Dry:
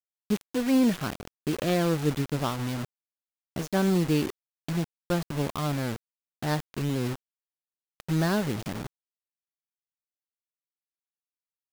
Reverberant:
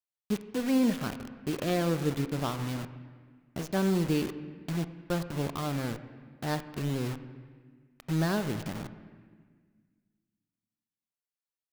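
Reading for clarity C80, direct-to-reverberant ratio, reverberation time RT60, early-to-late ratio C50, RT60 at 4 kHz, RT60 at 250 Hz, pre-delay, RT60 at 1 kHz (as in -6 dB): 13.0 dB, 11.0 dB, 1.6 s, 12.0 dB, 1.4 s, 2.4 s, 23 ms, 1.6 s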